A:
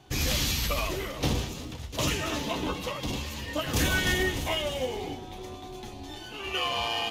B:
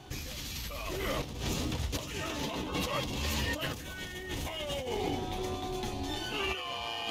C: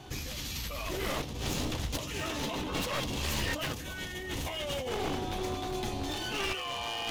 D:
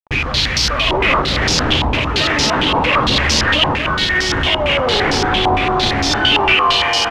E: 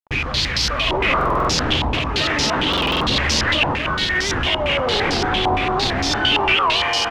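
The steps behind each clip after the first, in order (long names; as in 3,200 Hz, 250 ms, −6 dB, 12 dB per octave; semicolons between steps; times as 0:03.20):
compressor whose output falls as the input rises −36 dBFS, ratio −1
wavefolder on the positive side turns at −32.5 dBFS; level +2 dB
log-companded quantiser 2 bits; single-tap delay 231 ms −6.5 dB; low-pass on a step sequencer 8.8 Hz 920–5,200 Hz; level +9 dB
buffer that repeats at 0:01.17/0:02.69, samples 2,048, times 6; wow of a warped record 78 rpm, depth 160 cents; level −4 dB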